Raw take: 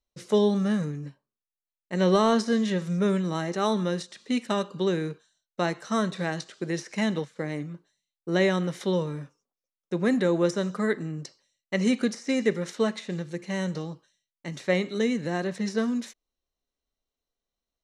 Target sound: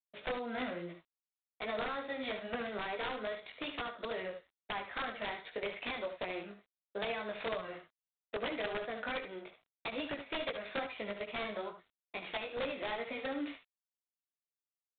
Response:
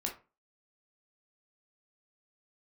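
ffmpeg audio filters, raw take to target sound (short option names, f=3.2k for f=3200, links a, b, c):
-af "highpass=480,acompressor=threshold=-36dB:ratio=8,flanger=delay=20:depth=3.3:speed=2,aresample=11025,aeval=exprs='(mod(47.3*val(0)+1,2)-1)/47.3':c=same,aresample=44100,asetrate=52479,aresample=44100,aecho=1:1:64|75:0.224|0.299,volume=5dB" -ar 8000 -c:a adpcm_g726 -b:a 24k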